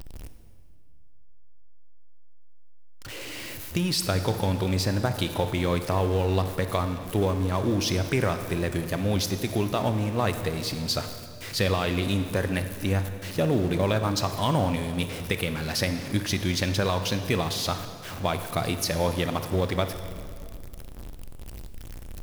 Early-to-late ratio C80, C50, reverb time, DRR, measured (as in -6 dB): 10.5 dB, 9.5 dB, 2.2 s, 8.5 dB